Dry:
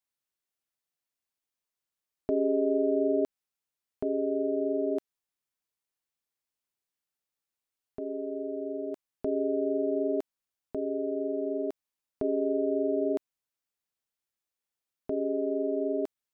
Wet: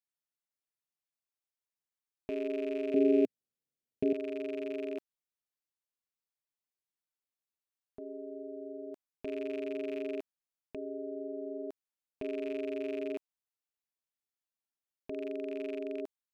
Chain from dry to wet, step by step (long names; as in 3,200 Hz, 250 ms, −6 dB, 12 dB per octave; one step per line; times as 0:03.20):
loose part that buzzes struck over −35 dBFS, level −29 dBFS
0:02.94–0:04.13: octave-band graphic EQ 125/250/500/1,000 Hz +11/+9/+10/−11 dB
level −8.5 dB